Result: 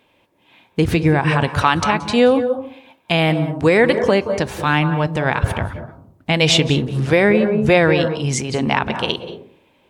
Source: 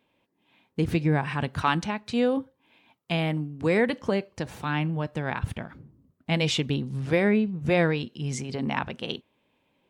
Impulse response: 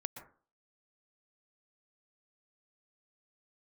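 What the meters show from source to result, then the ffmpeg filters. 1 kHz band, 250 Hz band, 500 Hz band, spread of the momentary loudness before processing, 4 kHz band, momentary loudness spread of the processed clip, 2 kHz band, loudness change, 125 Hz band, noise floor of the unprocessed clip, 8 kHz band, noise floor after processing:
+11.0 dB, +8.5 dB, +11.5 dB, 11 LU, +12.0 dB, 10 LU, +11.0 dB, +10.0 dB, +9.0 dB, −72 dBFS, +12.5 dB, −59 dBFS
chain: -filter_complex "[0:a]asplit=2[link_01][link_02];[1:a]atrim=start_sample=2205,asetrate=29547,aresample=44100[link_03];[link_02][link_03]afir=irnorm=-1:irlink=0,volume=3dB[link_04];[link_01][link_04]amix=inputs=2:normalize=0,alimiter=limit=-7dB:level=0:latency=1:release=115,equalizer=frequency=200:width=1.1:gain=-5.5,volume=5.5dB"

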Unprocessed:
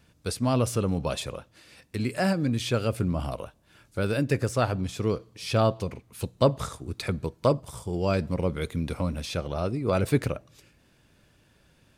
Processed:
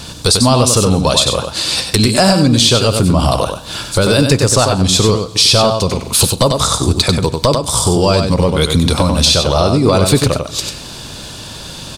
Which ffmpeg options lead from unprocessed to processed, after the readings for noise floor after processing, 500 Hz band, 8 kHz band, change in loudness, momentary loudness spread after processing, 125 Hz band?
−30 dBFS, +13.5 dB, +25.5 dB, +16.0 dB, 11 LU, +14.0 dB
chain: -filter_complex "[0:a]equalizer=frequency=1000:width_type=o:width=1:gain=6,equalizer=frequency=2000:width_type=o:width=1:gain=-7,equalizer=frequency=4000:width_type=o:width=1:gain=12,equalizer=frequency=8000:width_type=o:width=1:gain=8,acompressor=threshold=-37dB:ratio=6,asplit=2[link_01][link_02];[link_02]aecho=0:1:95:0.473[link_03];[link_01][link_03]amix=inputs=2:normalize=0,apsyclip=30.5dB,asplit=2[link_04][link_05];[link_05]aecho=0:1:133|266|399|532:0.0944|0.0481|0.0246|0.0125[link_06];[link_04][link_06]amix=inputs=2:normalize=0,volume=-2.5dB"

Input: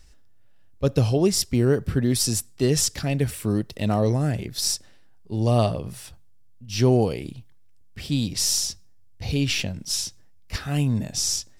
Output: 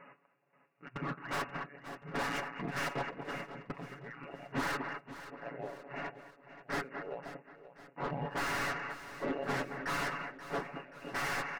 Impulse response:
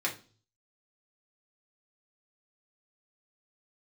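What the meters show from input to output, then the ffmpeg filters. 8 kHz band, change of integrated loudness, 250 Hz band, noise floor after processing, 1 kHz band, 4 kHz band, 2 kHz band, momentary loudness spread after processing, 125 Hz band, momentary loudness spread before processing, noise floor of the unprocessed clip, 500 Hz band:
−25.5 dB, −15.0 dB, −17.5 dB, −68 dBFS, −2.5 dB, −18.5 dB, 0.0 dB, 13 LU, −23.0 dB, 12 LU, −48 dBFS, −15.0 dB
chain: -filter_complex "[0:a]afftfilt=real='real(if(lt(b,736),b+184*(1-2*mod(floor(b/184),2)),b),0)':imag='imag(if(lt(b,736),b+184*(1-2*mod(floor(b/184),2)),b),0)':win_size=2048:overlap=0.75,alimiter=limit=-18dB:level=0:latency=1:release=76,afftfilt=real='re*between(b*sr/4096,120,2900)':imag='im*between(b*sr/4096,120,2900)':win_size=4096:overlap=0.75,asplit=2[link_01][link_02];[link_02]aecho=0:1:216:0.126[link_03];[link_01][link_03]amix=inputs=2:normalize=0,aeval=exprs='(tanh(141*val(0)+0.05)-tanh(0.05))/141':channel_layout=same,tiltshelf=frequency=970:gain=5,aecho=1:1:7.1:0.7,asplit=2[link_04][link_05];[link_05]aecho=0:1:530|1060|1590|2120:0.211|0.0972|0.0447|0.0206[link_06];[link_04][link_06]amix=inputs=2:normalize=0,volume=9dB"

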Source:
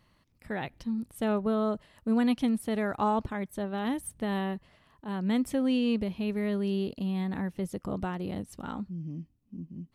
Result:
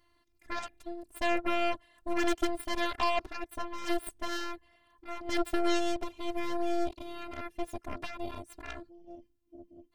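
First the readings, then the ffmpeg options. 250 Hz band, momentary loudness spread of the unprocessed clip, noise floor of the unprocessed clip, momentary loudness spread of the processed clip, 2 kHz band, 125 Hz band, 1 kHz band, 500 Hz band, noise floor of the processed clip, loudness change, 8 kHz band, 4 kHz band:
−8.0 dB, 11 LU, −69 dBFS, 15 LU, +3.5 dB, −16.0 dB, +0.5 dB, −2.0 dB, −71 dBFS, −3.5 dB, +1.0 dB, +3.5 dB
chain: -af "afftfilt=real='hypot(re,im)*cos(PI*b)':imag='0':win_size=512:overlap=0.75,aeval=exprs='0.1*(cos(1*acos(clip(val(0)/0.1,-1,1)))-cos(1*PI/2))+0.0282*(cos(8*acos(clip(val(0)/0.1,-1,1)))-cos(8*PI/2))':channel_layout=same,volume=1.5dB"

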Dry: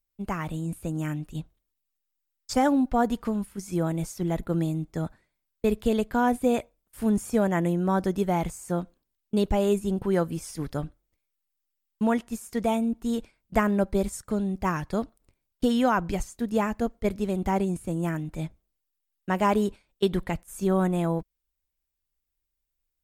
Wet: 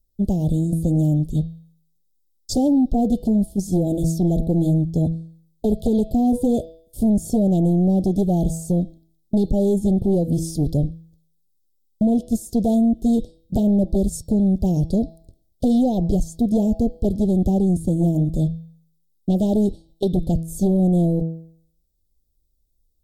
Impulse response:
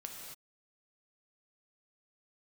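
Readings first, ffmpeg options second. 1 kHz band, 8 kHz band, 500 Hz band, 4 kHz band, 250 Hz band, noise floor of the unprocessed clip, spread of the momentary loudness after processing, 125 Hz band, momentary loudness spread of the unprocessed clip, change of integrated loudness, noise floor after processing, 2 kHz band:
−4.5 dB, +4.5 dB, +3.0 dB, can't be measured, +8.5 dB, −82 dBFS, 7 LU, +10.5 dB, 9 LU, +7.0 dB, −66 dBFS, below −35 dB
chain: -af "lowshelf=frequency=440:gain=11,bandreject=frequency=163.3:width_type=h:width=4,bandreject=frequency=326.6:width_type=h:width=4,bandreject=frequency=489.9:width_type=h:width=4,bandreject=frequency=653.2:width_type=h:width=4,bandreject=frequency=816.5:width_type=h:width=4,bandreject=frequency=979.8:width_type=h:width=4,bandreject=frequency=1143.1:width_type=h:width=4,bandreject=frequency=1306.4:width_type=h:width=4,bandreject=frequency=1469.7:width_type=h:width=4,bandreject=frequency=1633:width_type=h:width=4,bandreject=frequency=1796.3:width_type=h:width=4,bandreject=frequency=1959.6:width_type=h:width=4,bandreject=frequency=2122.9:width_type=h:width=4,bandreject=frequency=2286.2:width_type=h:width=4,bandreject=frequency=2449.5:width_type=h:width=4,bandreject=frequency=2612.8:width_type=h:width=4,bandreject=frequency=2776.1:width_type=h:width=4,bandreject=frequency=2939.4:width_type=h:width=4,bandreject=frequency=3102.7:width_type=h:width=4,bandreject=frequency=3266:width_type=h:width=4,bandreject=frequency=3429.3:width_type=h:width=4,bandreject=frequency=3592.6:width_type=h:width=4,bandreject=frequency=3755.9:width_type=h:width=4,bandreject=frequency=3919.2:width_type=h:width=4,bandreject=frequency=4082.5:width_type=h:width=4,bandreject=frequency=4245.8:width_type=h:width=4,bandreject=frequency=4409.1:width_type=h:width=4,bandreject=frequency=4572.4:width_type=h:width=4,bandreject=frequency=4735.7:width_type=h:width=4,bandreject=frequency=4899:width_type=h:width=4,bandreject=frequency=5062.3:width_type=h:width=4,bandreject=frequency=5225.6:width_type=h:width=4,bandreject=frequency=5388.9:width_type=h:width=4,bandreject=frequency=5552.2:width_type=h:width=4,acompressor=threshold=-18dB:ratio=4,aeval=exprs='0.355*sin(PI/2*2.24*val(0)/0.355)':channel_layout=same,asuperstop=centerf=1600:order=12:qfactor=0.58,volume=-4.5dB"

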